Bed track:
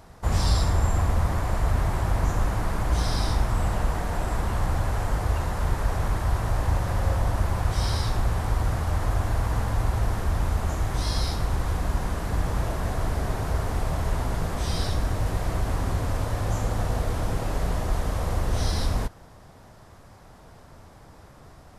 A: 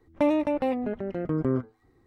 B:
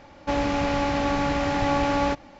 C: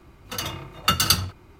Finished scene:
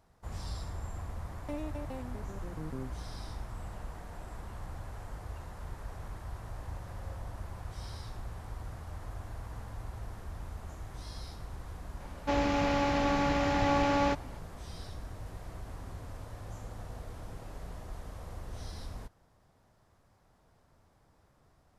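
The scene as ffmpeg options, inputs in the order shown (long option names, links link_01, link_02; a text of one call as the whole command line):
ffmpeg -i bed.wav -i cue0.wav -i cue1.wav -filter_complex "[0:a]volume=-17.5dB[link_01];[1:a]bass=frequency=250:gain=6,treble=frequency=4000:gain=14,atrim=end=2.06,asetpts=PTS-STARTPTS,volume=-18dB,afade=type=in:duration=0.004:curve=hsin,afade=type=out:start_time=2.056:duration=0.004:curve=hsin,adelay=1280[link_02];[2:a]atrim=end=2.39,asetpts=PTS-STARTPTS,volume=-4.5dB,afade=type=in:duration=0.004:curve=hsin,afade=type=out:start_time=2.386:duration=0.004:curve=hsin,adelay=12000[link_03];[link_01][link_02][link_03]amix=inputs=3:normalize=0" out.wav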